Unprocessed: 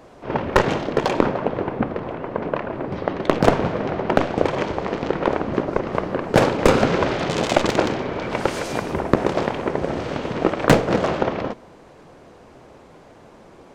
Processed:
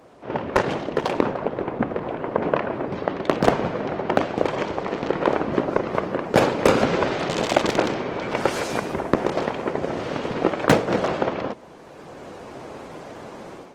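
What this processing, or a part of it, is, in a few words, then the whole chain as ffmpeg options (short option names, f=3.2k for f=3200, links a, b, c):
video call: -af "highpass=f=130:p=1,dynaudnorm=f=410:g=3:m=11.5dB,volume=-2dB" -ar 48000 -c:a libopus -b:a 20k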